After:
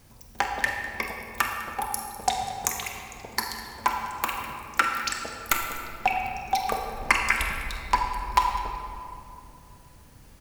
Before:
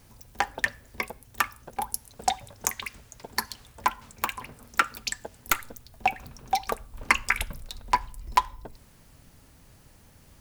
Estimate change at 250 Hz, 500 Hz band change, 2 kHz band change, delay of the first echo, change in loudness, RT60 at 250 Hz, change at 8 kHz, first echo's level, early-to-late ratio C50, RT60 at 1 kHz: +3.0 dB, +2.5 dB, +2.0 dB, 48 ms, +1.5 dB, 3.2 s, +1.0 dB, −12.5 dB, 3.0 dB, 2.5 s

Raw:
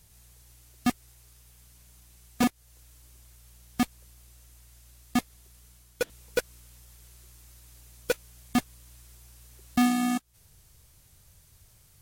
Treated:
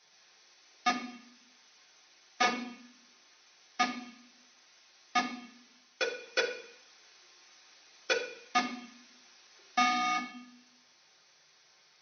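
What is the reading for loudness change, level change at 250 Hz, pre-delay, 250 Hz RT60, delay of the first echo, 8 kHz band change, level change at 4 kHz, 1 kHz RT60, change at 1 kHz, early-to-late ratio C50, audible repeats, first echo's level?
−2.5 dB, −12.5 dB, 3 ms, 0.90 s, no echo audible, −3.5 dB, +4.0 dB, 0.70 s, +3.5 dB, 8.5 dB, no echo audible, no echo audible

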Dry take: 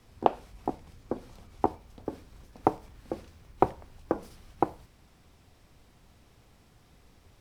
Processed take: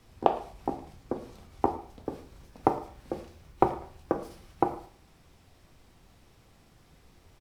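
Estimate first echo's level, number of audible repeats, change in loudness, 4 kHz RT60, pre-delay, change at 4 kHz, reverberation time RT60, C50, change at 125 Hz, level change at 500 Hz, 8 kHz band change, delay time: −19.0 dB, 1, +0.5 dB, 0.45 s, 4 ms, +1.0 dB, 0.50 s, 11.5 dB, +0.5 dB, +1.0 dB, can't be measured, 110 ms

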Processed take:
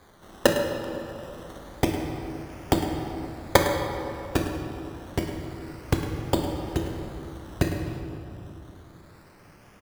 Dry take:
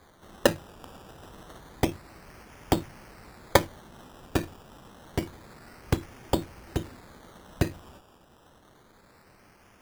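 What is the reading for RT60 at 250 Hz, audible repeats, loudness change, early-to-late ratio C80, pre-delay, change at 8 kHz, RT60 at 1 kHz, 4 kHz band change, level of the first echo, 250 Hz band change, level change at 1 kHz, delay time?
3.4 s, 1, +1.5 dB, 4.0 dB, 24 ms, +2.5 dB, 2.7 s, +3.0 dB, −12.5 dB, +4.5 dB, +3.5 dB, 105 ms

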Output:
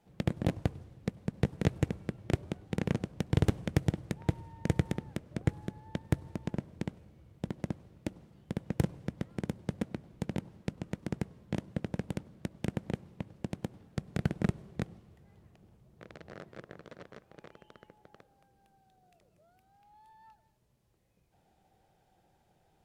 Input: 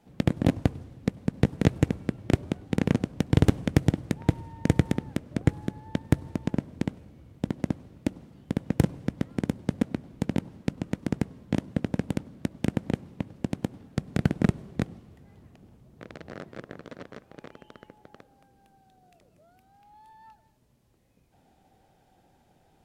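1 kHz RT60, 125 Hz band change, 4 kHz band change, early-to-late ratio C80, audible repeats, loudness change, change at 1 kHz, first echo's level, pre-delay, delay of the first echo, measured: no reverb audible, −6.0 dB, −6.0 dB, no reverb audible, no echo audible, −7.0 dB, −6.0 dB, no echo audible, no reverb audible, no echo audible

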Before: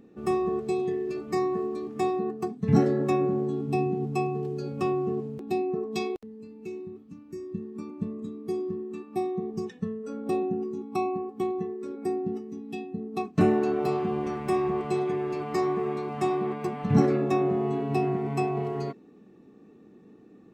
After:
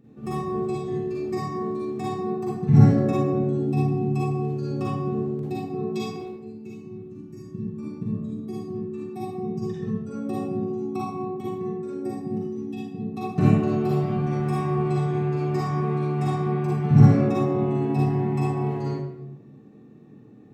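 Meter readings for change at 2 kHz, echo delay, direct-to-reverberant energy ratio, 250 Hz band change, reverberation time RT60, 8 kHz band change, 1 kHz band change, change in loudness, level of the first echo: −0.5 dB, no echo audible, −7.0 dB, +3.5 dB, 0.80 s, can't be measured, 0.0 dB, +4.0 dB, no echo audible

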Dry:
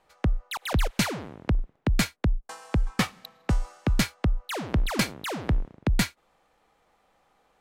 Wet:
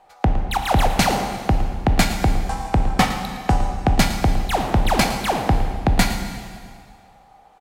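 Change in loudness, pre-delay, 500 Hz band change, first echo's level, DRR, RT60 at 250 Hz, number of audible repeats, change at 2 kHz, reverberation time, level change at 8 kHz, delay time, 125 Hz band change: +8.0 dB, 7 ms, +10.5 dB, −13.0 dB, 4.5 dB, 1.9 s, 1, +7.0 dB, 1.9 s, +7.0 dB, 111 ms, +7.0 dB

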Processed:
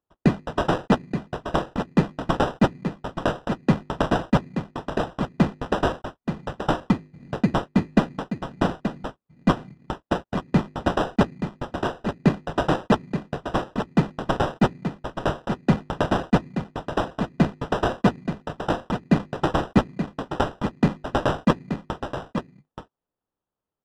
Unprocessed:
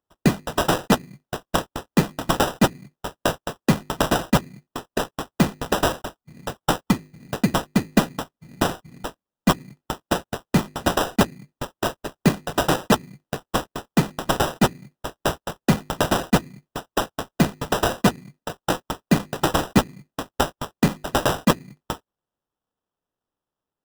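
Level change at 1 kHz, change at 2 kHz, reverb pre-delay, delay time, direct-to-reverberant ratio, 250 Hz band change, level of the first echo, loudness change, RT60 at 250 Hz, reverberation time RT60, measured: −1.5 dB, −3.5 dB, no reverb audible, 878 ms, no reverb audible, 0.0 dB, −8.5 dB, −1.5 dB, no reverb audible, no reverb audible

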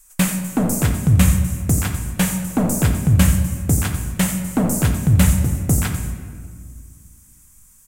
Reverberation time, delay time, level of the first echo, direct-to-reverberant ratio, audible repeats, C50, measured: 1.9 s, 88 ms, −12.0 dB, 3.5 dB, 1, 6.0 dB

